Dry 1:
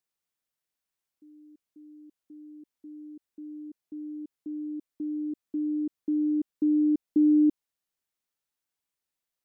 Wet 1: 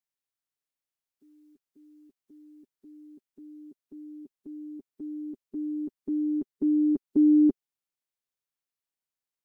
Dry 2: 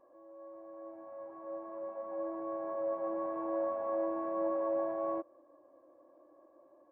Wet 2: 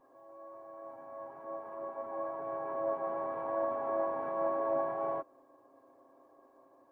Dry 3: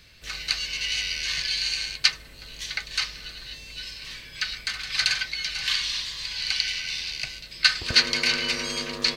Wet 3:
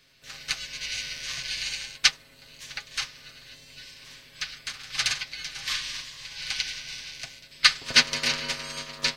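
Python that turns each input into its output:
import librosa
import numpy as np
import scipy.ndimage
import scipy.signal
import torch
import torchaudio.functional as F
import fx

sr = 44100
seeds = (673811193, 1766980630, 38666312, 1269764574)

y = fx.spec_clip(x, sr, under_db=13)
y = y + 0.61 * np.pad(y, (int(7.4 * sr / 1000.0), 0))[:len(y)]
y = fx.upward_expand(y, sr, threshold_db=-32.0, expansion=1.5)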